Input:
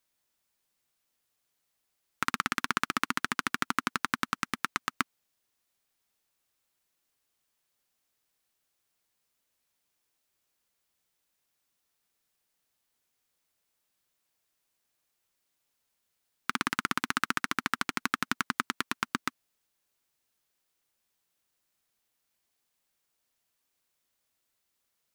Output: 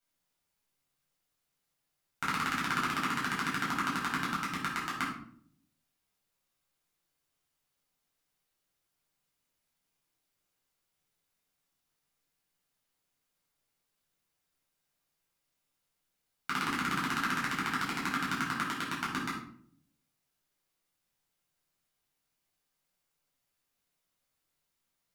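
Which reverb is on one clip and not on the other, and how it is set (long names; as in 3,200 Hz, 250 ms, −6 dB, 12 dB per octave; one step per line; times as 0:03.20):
rectangular room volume 820 cubic metres, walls furnished, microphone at 7.5 metres
level −10.5 dB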